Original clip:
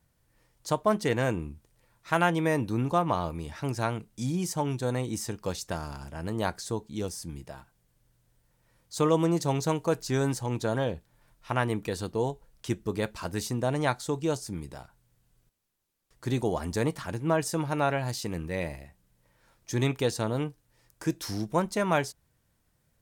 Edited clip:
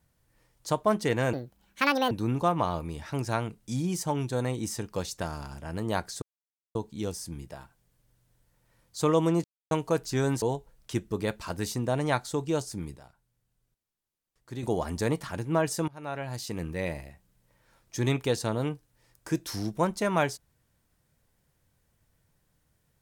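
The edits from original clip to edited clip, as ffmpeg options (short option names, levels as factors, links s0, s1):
-filter_complex "[0:a]asplit=10[s0][s1][s2][s3][s4][s5][s6][s7][s8][s9];[s0]atrim=end=1.334[s10];[s1]atrim=start=1.33:end=2.61,asetpts=PTS-STARTPTS,asetrate=72324,aresample=44100[s11];[s2]atrim=start=2.606:end=6.72,asetpts=PTS-STARTPTS,afade=t=out:st=4.11:d=0.004:c=hsin,apad=pad_dur=0.53[s12];[s3]atrim=start=6.72:end=9.41,asetpts=PTS-STARTPTS,afade=t=in:d=0.004:c=hsin,afade=t=out:st=2.686:d=0.004:c=hsin[s13];[s4]atrim=start=9.41:end=9.68,asetpts=PTS-STARTPTS,volume=0[s14];[s5]atrim=start=9.68:end=10.392,asetpts=PTS-STARTPTS,afade=t=in:d=0.004:c=hsin[s15];[s6]atrim=start=12.168:end=14.712[s16];[s7]atrim=start=14.708:end=16.382,asetpts=PTS-STARTPTS,volume=0.376[s17];[s8]atrim=start=16.378:end=17.63,asetpts=PTS-STARTPTS,afade=t=out:st=1.248:d=0.004:c=hsin:silence=0.0668344[s18];[s9]atrim=start=17.63,asetpts=PTS-STARTPTS,afade=t=in:d=0.76:silence=0.0668344[s19];[s10][s11]acrossfade=d=0.004:c1=hsin:c2=hsin[s20];[s12][s13][s14][s15]concat=n=4:v=0:a=1[s21];[s20][s21]acrossfade=d=0.004:c1=hsin:c2=hsin[s22];[s22][s16]acrossfade=d=0.004:c1=hsin:c2=hsin[s23];[s23][s17]acrossfade=d=0.004:c1=hsin:c2=hsin[s24];[s18][s19]concat=n=2:v=0:a=1[s25];[s24][s25]acrossfade=d=0.004:c1=hsin:c2=hsin"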